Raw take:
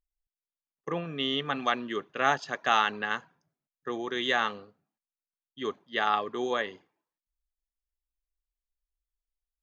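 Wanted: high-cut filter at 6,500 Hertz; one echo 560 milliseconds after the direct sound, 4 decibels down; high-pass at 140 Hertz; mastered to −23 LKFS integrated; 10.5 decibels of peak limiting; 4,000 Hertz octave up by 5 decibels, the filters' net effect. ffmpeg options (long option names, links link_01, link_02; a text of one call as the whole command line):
ffmpeg -i in.wav -af "highpass=140,lowpass=6500,equalizer=frequency=4000:width_type=o:gain=7,alimiter=limit=-17dB:level=0:latency=1,aecho=1:1:560:0.631,volume=8dB" out.wav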